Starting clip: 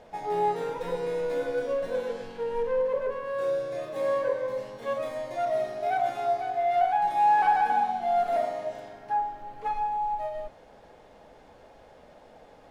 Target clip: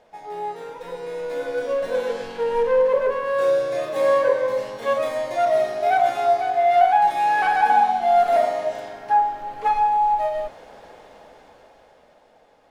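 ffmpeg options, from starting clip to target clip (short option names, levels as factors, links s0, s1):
-filter_complex "[0:a]asettb=1/sr,asplit=3[s0][s1][s2];[s0]atrim=end=7.104[s3];[s1]atrim=start=7.1:end=7.63,asetpts=PTS-STARTPTS,afade=t=in:d=0.004:c=qsin,afade=t=out:st=0.526:d=0.004:c=qsin,equalizer=f=890:w=5.8:g=-12[s4];[s2]atrim=start=7.626[s5];[s3][s4]acrossfade=d=0.004:c1=hsin:c2=qsin[s6];[s6][s5]acrossfade=d=0.004:c1=qsin:c2=hsin,dynaudnorm=f=260:g=13:m=5.31,lowshelf=f=300:g=-8.5,volume=0.75"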